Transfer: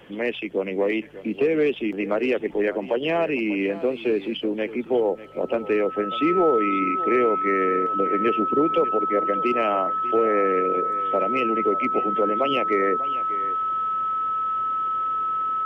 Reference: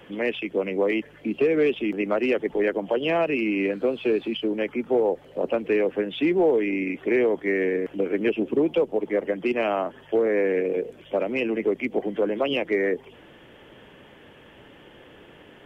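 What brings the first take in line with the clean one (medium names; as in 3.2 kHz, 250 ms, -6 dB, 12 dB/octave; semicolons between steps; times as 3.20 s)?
band-stop 1.3 kHz, Q 30; inverse comb 594 ms -15.5 dB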